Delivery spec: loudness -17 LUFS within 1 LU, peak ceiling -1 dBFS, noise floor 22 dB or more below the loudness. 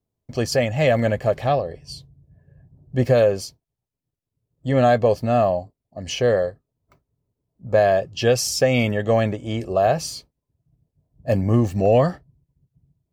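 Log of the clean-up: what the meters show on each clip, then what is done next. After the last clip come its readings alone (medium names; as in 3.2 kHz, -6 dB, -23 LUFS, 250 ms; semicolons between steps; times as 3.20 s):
loudness -20.5 LUFS; peak level -5.5 dBFS; loudness target -17.0 LUFS
-> trim +3.5 dB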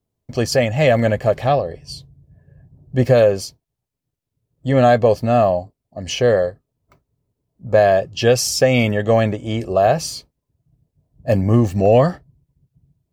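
loudness -17.0 LUFS; peak level -2.0 dBFS; noise floor -80 dBFS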